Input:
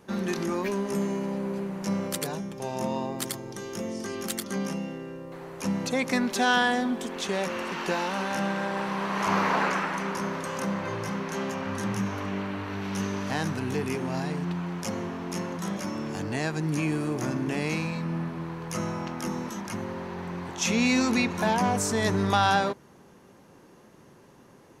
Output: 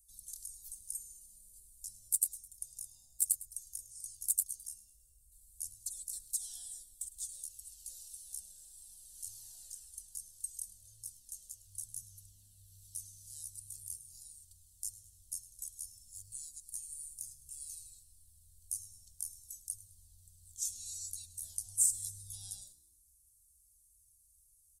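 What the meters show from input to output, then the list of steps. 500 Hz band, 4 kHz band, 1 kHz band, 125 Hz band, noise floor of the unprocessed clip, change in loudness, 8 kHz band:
below −40 dB, −20.5 dB, below −40 dB, −29.5 dB, −54 dBFS, −11.0 dB, +1.5 dB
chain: inverse Chebyshev band-stop filter 150–2,400 Hz, stop band 50 dB
high shelf with overshoot 7,200 Hz +7 dB, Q 3
echo with shifted repeats 105 ms, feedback 45%, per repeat +63 Hz, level −17.5 dB
flanger whose copies keep moving one way falling 1.7 Hz

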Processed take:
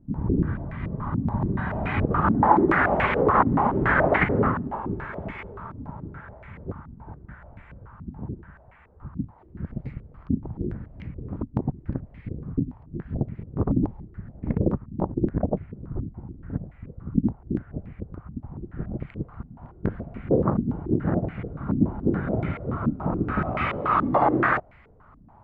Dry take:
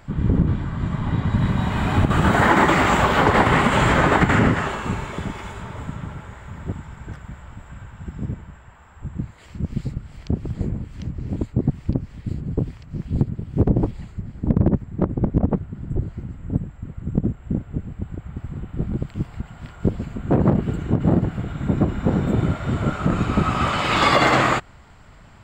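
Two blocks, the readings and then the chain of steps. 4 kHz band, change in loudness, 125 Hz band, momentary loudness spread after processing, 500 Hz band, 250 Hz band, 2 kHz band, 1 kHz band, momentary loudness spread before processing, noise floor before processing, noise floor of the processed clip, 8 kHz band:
below −15 dB, −4.0 dB, −6.5 dB, 19 LU, −2.5 dB, −4.0 dB, −5.0 dB, −3.0 dB, 18 LU, −46 dBFS, −52 dBFS, can't be measured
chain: low-pass on a step sequencer 7 Hz 260–2,200 Hz
level −7.5 dB

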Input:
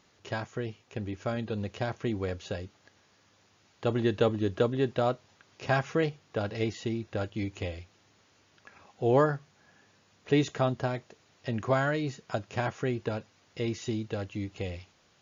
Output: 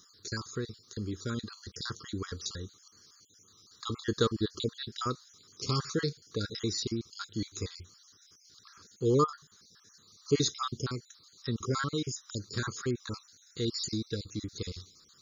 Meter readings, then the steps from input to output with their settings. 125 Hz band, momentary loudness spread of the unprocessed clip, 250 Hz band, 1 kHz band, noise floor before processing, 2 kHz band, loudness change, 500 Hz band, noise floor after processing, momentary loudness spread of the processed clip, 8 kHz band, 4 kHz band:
−3.0 dB, 12 LU, −3.0 dB, −4.0 dB, −65 dBFS, −6.5 dB, −3.0 dB, −5.5 dB, −62 dBFS, 14 LU, can't be measured, +6.5 dB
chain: time-frequency cells dropped at random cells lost 43%
drawn EQ curve 460 Hz 0 dB, 690 Hz −30 dB, 1,200 Hz +5 dB, 2,700 Hz −12 dB, 4,000 Hz +14 dB

